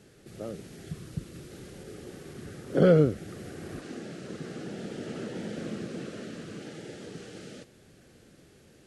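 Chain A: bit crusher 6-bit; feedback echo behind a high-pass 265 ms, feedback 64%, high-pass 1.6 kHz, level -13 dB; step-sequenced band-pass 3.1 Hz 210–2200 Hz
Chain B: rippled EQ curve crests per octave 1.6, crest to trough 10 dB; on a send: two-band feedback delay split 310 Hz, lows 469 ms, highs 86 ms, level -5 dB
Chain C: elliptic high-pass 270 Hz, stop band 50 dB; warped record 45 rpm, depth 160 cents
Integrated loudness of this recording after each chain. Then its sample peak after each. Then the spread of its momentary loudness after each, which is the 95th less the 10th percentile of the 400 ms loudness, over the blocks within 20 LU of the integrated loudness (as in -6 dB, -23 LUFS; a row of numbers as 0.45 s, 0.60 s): -41.0 LUFS, -30.0 LUFS, -33.5 LUFS; -17.0 dBFS, -6.5 dBFS, -12.0 dBFS; 23 LU, 19 LU, 23 LU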